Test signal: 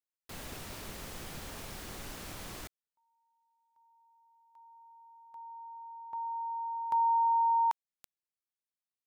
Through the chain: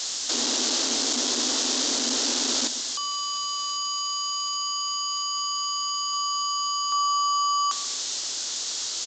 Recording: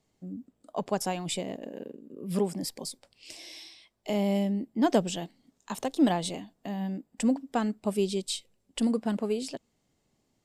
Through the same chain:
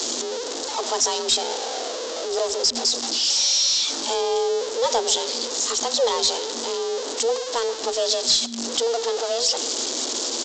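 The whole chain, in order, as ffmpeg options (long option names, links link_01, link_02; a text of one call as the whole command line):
ffmpeg -i in.wav -filter_complex "[0:a]aeval=exprs='val(0)+0.5*0.0473*sgn(val(0))':channel_layout=same,highshelf=frequency=5900:gain=-8.5,afreqshift=230,aexciter=amount=10.5:drive=1.4:freq=3400,asplit=2[link_01][link_02];[link_02]adelay=133,lowpass=frequency=1300:poles=1,volume=-13dB,asplit=2[link_03][link_04];[link_04]adelay=133,lowpass=frequency=1300:poles=1,volume=0.32,asplit=2[link_05][link_06];[link_06]adelay=133,lowpass=frequency=1300:poles=1,volume=0.32[link_07];[link_03][link_05][link_07]amix=inputs=3:normalize=0[link_08];[link_01][link_08]amix=inputs=2:normalize=0,acontrast=81,aresample=16000,aeval=exprs='val(0)*gte(abs(val(0)),0.0168)':channel_layout=same,aresample=44100,lowshelf=frequency=110:gain=6,volume=-7dB" out.wav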